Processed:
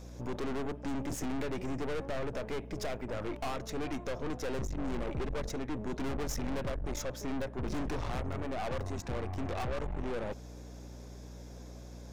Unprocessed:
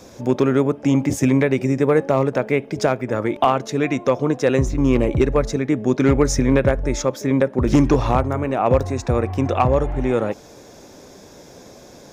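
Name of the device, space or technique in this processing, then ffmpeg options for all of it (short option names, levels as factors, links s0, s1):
valve amplifier with mains hum: -af "aeval=exprs='(tanh(22.4*val(0)+0.75)-tanh(0.75))/22.4':c=same,aeval=exprs='val(0)+0.0112*(sin(2*PI*60*n/s)+sin(2*PI*2*60*n/s)/2+sin(2*PI*3*60*n/s)/3+sin(2*PI*4*60*n/s)/4+sin(2*PI*5*60*n/s)/5)':c=same,volume=0.447"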